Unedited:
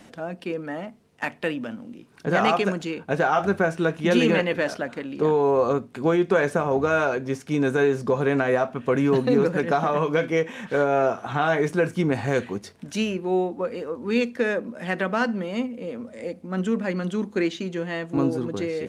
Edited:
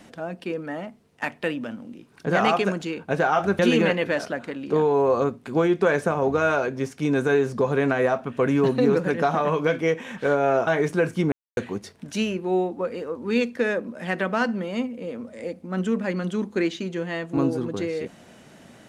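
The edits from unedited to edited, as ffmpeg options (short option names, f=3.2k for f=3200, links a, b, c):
-filter_complex "[0:a]asplit=5[a][b][c][d][e];[a]atrim=end=3.592[f];[b]atrim=start=4.078:end=11.162[g];[c]atrim=start=11.468:end=12.12,asetpts=PTS-STARTPTS,afade=t=out:st=0.648:d=0.004:c=hsin[h];[d]atrim=start=12.12:end=12.37,asetpts=PTS-STARTPTS,volume=0[i];[e]atrim=start=12.37,asetpts=PTS-STARTPTS,afade=t=in:d=0.004:c=hsin[j];[f][g]acrossfade=d=0.004:c1=hsin:c2=hsin[k];[h][i][j]concat=n=3:v=0:a=1[l];[k][l]acrossfade=d=0.004:c1=hsin:c2=hsin"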